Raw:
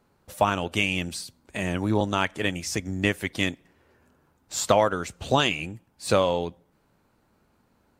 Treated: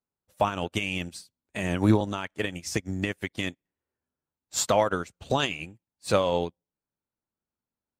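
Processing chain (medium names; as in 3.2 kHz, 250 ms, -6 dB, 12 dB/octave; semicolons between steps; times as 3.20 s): peak limiter -16 dBFS, peak gain reduction 11 dB; upward expansion 2.5:1, over -48 dBFS; trim +8.5 dB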